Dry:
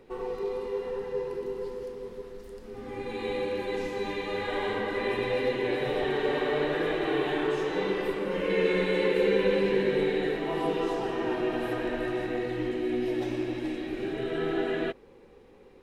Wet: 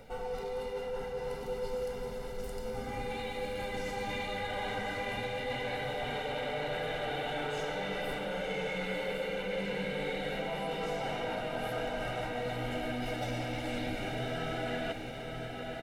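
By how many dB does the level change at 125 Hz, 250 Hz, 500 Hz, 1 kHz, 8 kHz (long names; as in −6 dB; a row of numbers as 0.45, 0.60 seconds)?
−1.0 dB, −9.5 dB, −8.0 dB, −1.5 dB, can't be measured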